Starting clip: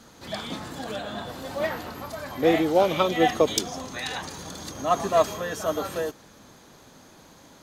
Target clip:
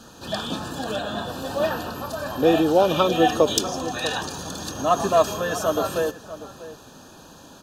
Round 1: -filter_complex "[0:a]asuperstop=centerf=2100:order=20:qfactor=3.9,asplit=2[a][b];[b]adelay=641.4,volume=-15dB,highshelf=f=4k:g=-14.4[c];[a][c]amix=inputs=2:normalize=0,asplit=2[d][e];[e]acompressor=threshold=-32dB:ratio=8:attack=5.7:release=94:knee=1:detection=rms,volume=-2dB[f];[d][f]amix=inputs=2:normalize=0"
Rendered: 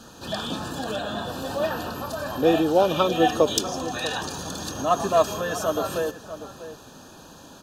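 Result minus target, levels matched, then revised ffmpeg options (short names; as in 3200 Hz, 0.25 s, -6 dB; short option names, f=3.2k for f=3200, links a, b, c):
compressor: peak gain reduction +8.5 dB
-filter_complex "[0:a]asuperstop=centerf=2100:order=20:qfactor=3.9,asplit=2[a][b];[b]adelay=641.4,volume=-15dB,highshelf=f=4k:g=-14.4[c];[a][c]amix=inputs=2:normalize=0,asplit=2[d][e];[e]acompressor=threshold=-22.5dB:ratio=8:attack=5.7:release=94:knee=1:detection=rms,volume=-2dB[f];[d][f]amix=inputs=2:normalize=0"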